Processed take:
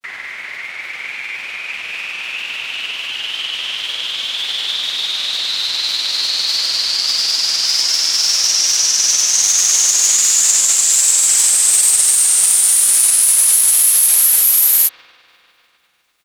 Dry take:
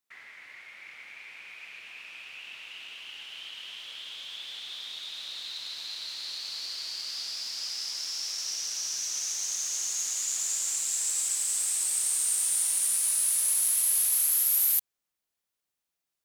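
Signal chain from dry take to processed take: spring tank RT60 3.2 s, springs 34 ms, chirp 35 ms, DRR 13.5 dB; grains 0.1 s, grains 20/s, pitch spread up and down by 0 st; maximiser +22 dB; gain -1 dB

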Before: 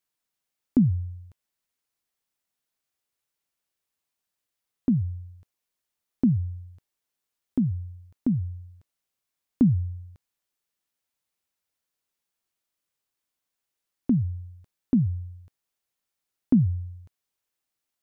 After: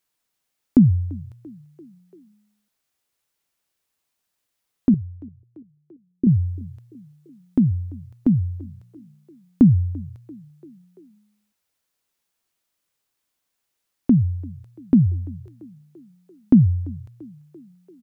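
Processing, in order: 4.94–6.27 ladder low-pass 400 Hz, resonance 65%; on a send: frequency-shifting echo 0.34 s, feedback 59%, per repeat +30 Hz, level -23.5 dB; on the sum: gain +6.5 dB

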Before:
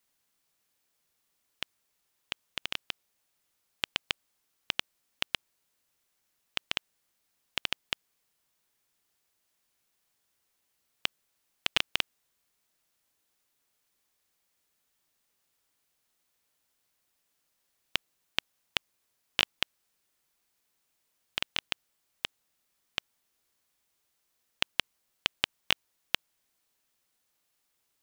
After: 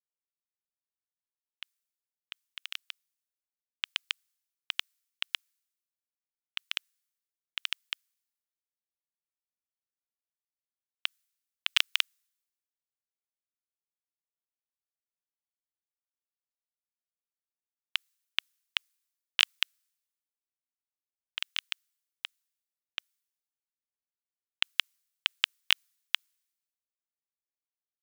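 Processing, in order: HPF 1200 Hz 24 dB/oct; high shelf 5400 Hz +4.5 dB; three-band expander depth 100%; gain -5 dB

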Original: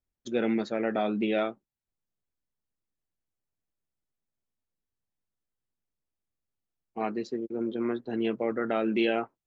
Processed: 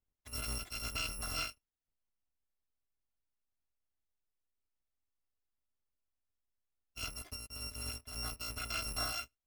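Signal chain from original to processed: FFT order left unsorted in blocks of 256 samples; LPF 1300 Hz 6 dB/oct; gain +1 dB

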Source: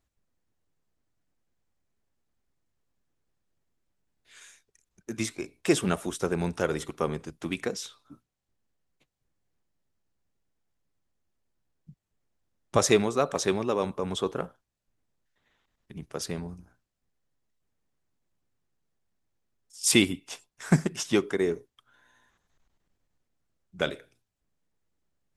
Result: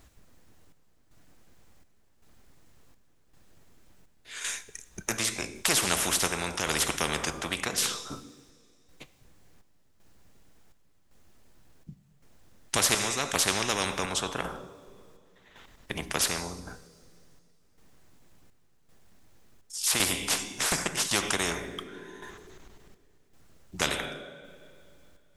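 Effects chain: chopper 0.9 Hz, depth 65%, duty 65%; two-slope reverb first 0.81 s, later 2.6 s, from -19 dB, DRR 14 dB; spectral compressor 4:1

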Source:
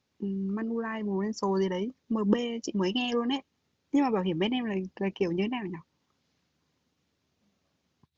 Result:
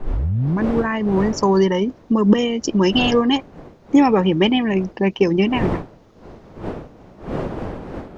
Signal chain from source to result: tape start at the beginning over 0.63 s; wind noise 470 Hz -43 dBFS; maximiser +13 dB; gain -1 dB

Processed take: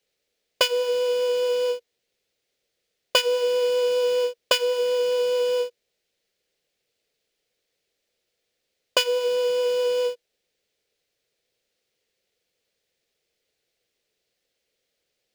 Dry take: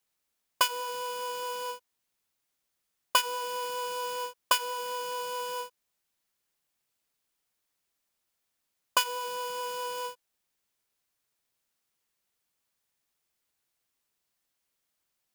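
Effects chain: EQ curve 290 Hz 0 dB, 480 Hz +13 dB, 1000 Hz -10 dB, 2000 Hz +2 dB, 4300 Hz +3 dB, 11000 Hz -9 dB; gain +5 dB

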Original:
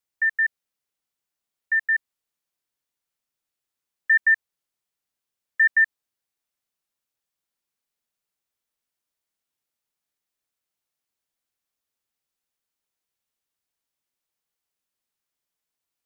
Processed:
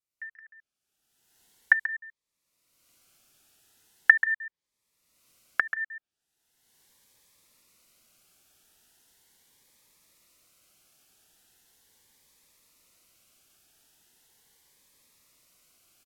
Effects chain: recorder AGC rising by 32 dB/s; treble ducked by the level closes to 1500 Hz, closed at -20 dBFS; dynamic EQ 1800 Hz, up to +4 dB, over -23 dBFS, Q 1; on a send: echo 0.135 s -12 dB; on the sum: cascading phaser rising 0.39 Hz; gain -7.5 dB

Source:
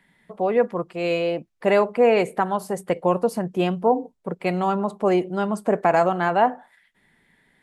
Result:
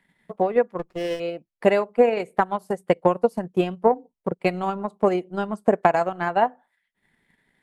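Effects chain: transient shaper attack +10 dB, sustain -9 dB; 0.79–1.2 running maximum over 9 samples; gain -5.5 dB

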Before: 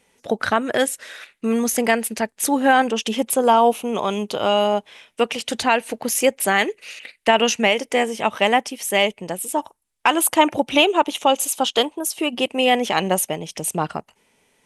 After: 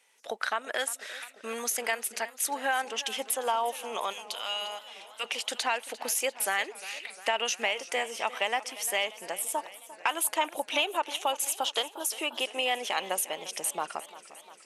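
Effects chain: Bessel high-pass 960 Hz, order 2, from 4.12 s 2400 Hz, from 5.23 s 780 Hz; compressor 2:1, threshold -27 dBFS, peak gain reduction 8.5 dB; warbling echo 0.351 s, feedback 67%, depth 74 cents, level -17 dB; gain -2.5 dB

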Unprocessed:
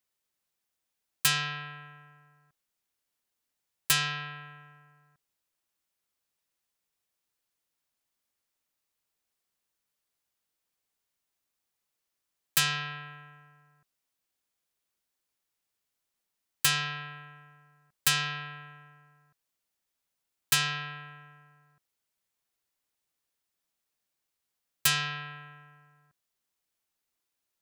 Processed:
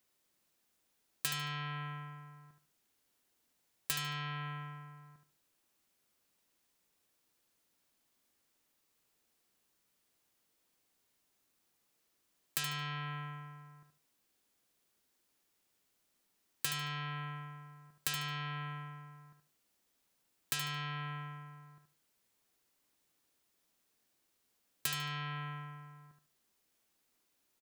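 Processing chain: compressor 4:1, threshold -43 dBFS, peak gain reduction 19 dB; bell 280 Hz +6 dB 1.6 oct; on a send: feedback echo 74 ms, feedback 25%, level -7.5 dB; on the sum: gain +5 dB

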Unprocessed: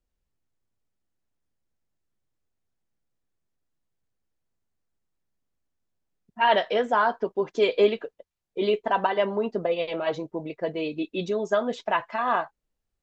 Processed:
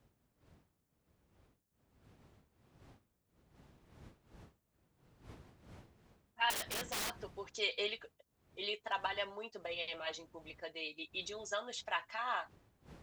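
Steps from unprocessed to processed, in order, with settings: wind noise 81 Hz -27 dBFS; differentiator; 6.5–7.18 wrapped overs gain 37 dB; gain +3.5 dB

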